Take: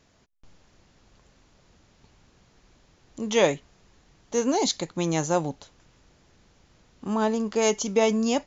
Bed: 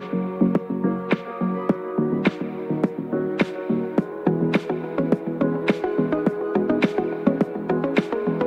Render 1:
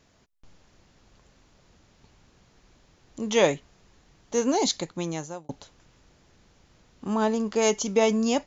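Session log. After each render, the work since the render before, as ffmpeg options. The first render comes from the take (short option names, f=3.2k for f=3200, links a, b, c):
-filter_complex "[0:a]asplit=2[a][b];[a]atrim=end=5.49,asetpts=PTS-STARTPTS,afade=t=out:st=4.75:d=0.74[c];[b]atrim=start=5.49,asetpts=PTS-STARTPTS,afade=t=in:d=0.004:c=hsin[d];[c][d]concat=n=2:v=0:a=1"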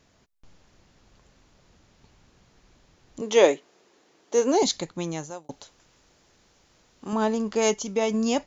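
-filter_complex "[0:a]asettb=1/sr,asplit=3[a][b][c];[a]atrim=end=3.214[d];[b]atrim=start=3.21:end=4.63,asetpts=PTS-STARTPTS,afade=t=in:d=0.004:c=qsin,afade=t=out:st=1.416:d=0.004:c=qsin,highpass=f=360:t=q:w=1.8[e];[c]atrim=start=4.626[f];[d][e]acrossfade=d=0.004:c1=hsin:c2=qsin[g];[g][f]acrossfade=d=0.004:c1=qsin:c2=hsin,asettb=1/sr,asplit=3[h][i][j];[h]atrim=end=5.304[k];[i]atrim=start=5.3:end=7.13,asetpts=PTS-STARTPTS,afade=t=in:d=0.004:c=qsin,afade=t=out:st=1.826:d=0.004:c=qsin,bass=f=250:g=-7,treble=f=4k:g=4[l];[j]atrim=start=7.126[m];[k][l]acrossfade=d=0.004:c1=hsin:c2=qsin[n];[n][m]acrossfade=d=0.004:c1=qsin:c2=hsin,asplit=3[o][p][q];[o]atrim=end=7.742[r];[p]atrim=start=7.738:end=8.142,asetpts=PTS-STARTPTS,volume=-3.5dB[s];[q]atrim=start=8.138[t];[r][s]acrossfade=d=0.004:c1=hsin:c2=hsin[u];[u][t]acrossfade=d=0.004:c1=hsin:c2=hsin"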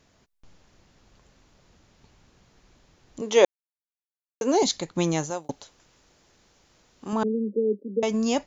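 -filter_complex "[0:a]asplit=3[a][b][c];[a]afade=t=out:st=4.95:d=0.02[d];[b]acontrast=69,afade=t=in:st=4.95:d=0.02,afade=t=out:st=5.5:d=0.02[e];[c]afade=t=in:st=5.5:d=0.02[f];[d][e][f]amix=inputs=3:normalize=0,asettb=1/sr,asplit=3[g][h][i];[g]atrim=end=7.234[j];[h]atrim=start=7.23:end=8.03,asetpts=PTS-STARTPTS,afade=t=in:d=0.004:c=qsin,afade=t=out:st=0.796:d=0.004:c=qsin,asuperpass=centerf=320:order=20:qfactor=0.93[k];[i]atrim=start=8.026[l];[j][k]acrossfade=d=0.004:c1=hsin:c2=qsin[m];[m][l]acrossfade=d=0.004:c1=qsin:c2=hsin,asplit=3[n][o][p];[n]atrim=end=3.45,asetpts=PTS-STARTPTS,afade=t=out:st=3.446:d=0.004:c=hsin[q];[o]atrim=start=3.45:end=4.41,asetpts=PTS-STARTPTS,volume=0[r];[p]atrim=start=4.41,asetpts=PTS-STARTPTS,afade=t=in:d=0.004:c=hsin[s];[q][r][s]concat=n=3:v=0:a=1"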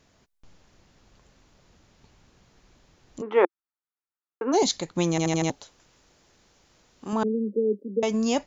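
-filter_complex "[0:a]asplit=3[a][b][c];[a]afade=t=out:st=3.21:d=0.02[d];[b]highpass=270,equalizer=f=340:t=q:w=4:g=5,equalizer=f=590:t=q:w=4:g=-10,equalizer=f=860:t=q:w=4:g=3,equalizer=f=1.3k:t=q:w=4:g=8,lowpass=f=2.1k:w=0.5412,lowpass=f=2.1k:w=1.3066,afade=t=in:st=3.21:d=0.02,afade=t=out:st=4.52:d=0.02[e];[c]afade=t=in:st=4.52:d=0.02[f];[d][e][f]amix=inputs=3:normalize=0,asplit=6[g][h][i][j][k][l];[g]atrim=end=5.182[m];[h]atrim=start=5.098:end=5.182[n];[i]atrim=start=5.098:end=5.182[o];[j]atrim=start=5.098:end=5.182[p];[k]atrim=start=5.098:end=5.182[q];[l]atrim=start=5.498[r];[m][n]acrossfade=d=0.004:c1=hsin:c2=hsin[s];[s][o]acrossfade=d=0.004:c1=hsin:c2=hsin[t];[t][p]acrossfade=d=0.004:c1=hsin:c2=hsin[u];[u][q]acrossfade=d=0.004:c1=hsin:c2=hsin[v];[v][r]acrossfade=d=0.004:c1=hsin:c2=hsin"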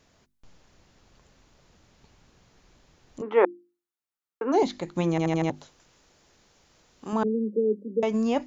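-filter_complex "[0:a]bandreject=f=50:t=h:w=6,bandreject=f=100:t=h:w=6,bandreject=f=150:t=h:w=6,bandreject=f=200:t=h:w=6,bandreject=f=250:t=h:w=6,bandreject=f=300:t=h:w=6,bandreject=f=350:t=h:w=6,acrossover=split=2800[a][b];[b]acompressor=threshold=-49dB:ratio=4:attack=1:release=60[c];[a][c]amix=inputs=2:normalize=0"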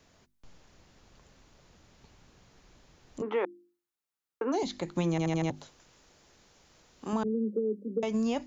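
-filter_complex "[0:a]acrossover=split=160|3000[a][b][c];[b]acompressor=threshold=-28dB:ratio=6[d];[a][d][c]amix=inputs=3:normalize=0"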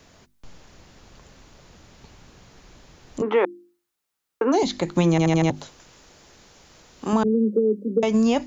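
-af "volume=10dB"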